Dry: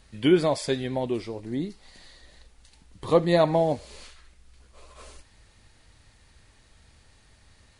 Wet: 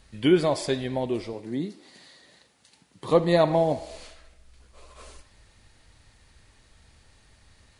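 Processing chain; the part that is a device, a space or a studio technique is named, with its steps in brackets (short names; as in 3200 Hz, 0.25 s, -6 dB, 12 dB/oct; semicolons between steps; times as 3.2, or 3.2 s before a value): filtered reverb send (on a send: HPF 440 Hz 12 dB/oct + LPF 4400 Hz + reverb RT60 0.95 s, pre-delay 54 ms, DRR 14.5 dB); 1.33–3.11 on the sum: HPF 120 Hz 24 dB/oct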